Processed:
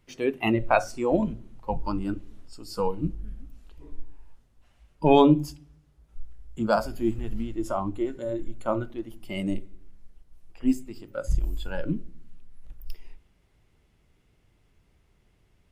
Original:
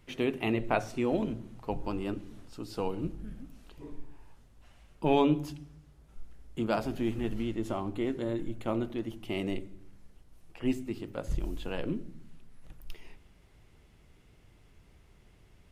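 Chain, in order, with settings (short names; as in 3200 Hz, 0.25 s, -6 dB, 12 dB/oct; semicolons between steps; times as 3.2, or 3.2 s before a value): spectral noise reduction 13 dB; gain +8 dB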